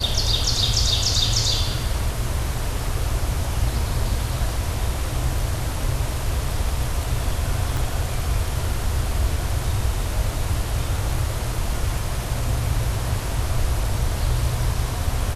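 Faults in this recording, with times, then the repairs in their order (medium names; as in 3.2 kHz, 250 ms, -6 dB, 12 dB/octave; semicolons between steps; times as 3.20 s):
7.77 s: pop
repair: de-click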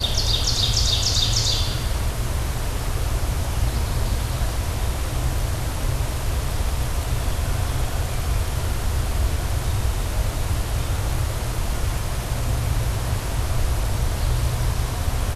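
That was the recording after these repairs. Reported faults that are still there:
7.77 s: pop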